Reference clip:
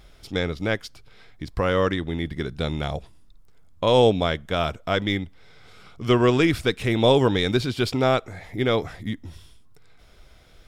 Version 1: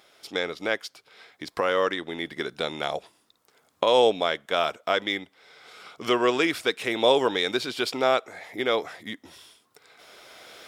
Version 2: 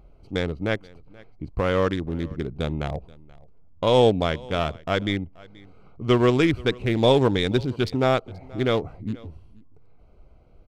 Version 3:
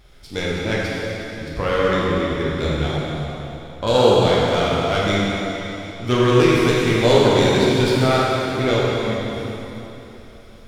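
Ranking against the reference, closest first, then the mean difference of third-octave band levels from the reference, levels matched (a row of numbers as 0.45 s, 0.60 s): 2, 1, 3; 3.5 dB, 5.5 dB, 9.5 dB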